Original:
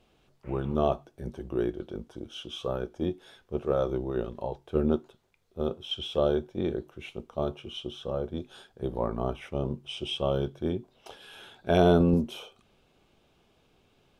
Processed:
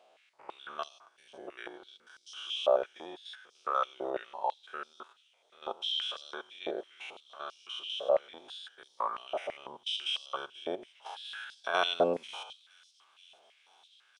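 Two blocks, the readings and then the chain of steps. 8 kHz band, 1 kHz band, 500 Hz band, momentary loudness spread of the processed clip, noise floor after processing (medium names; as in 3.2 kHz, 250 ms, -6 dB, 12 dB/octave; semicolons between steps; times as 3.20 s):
no reading, +0.5 dB, -6.0 dB, 18 LU, -68 dBFS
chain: spectrogram pixelated in time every 100 ms; resampled via 22.05 kHz; on a send: feedback echo behind a high-pass 480 ms, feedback 82%, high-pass 4.9 kHz, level -17.5 dB; on the sum: step-sequenced high-pass 6 Hz 640–4900 Hz; trim +1 dB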